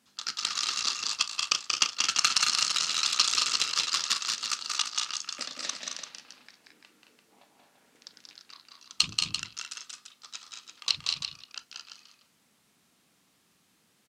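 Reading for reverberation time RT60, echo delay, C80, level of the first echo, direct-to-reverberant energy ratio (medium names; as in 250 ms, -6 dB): no reverb, 183 ms, no reverb, -4.0 dB, no reverb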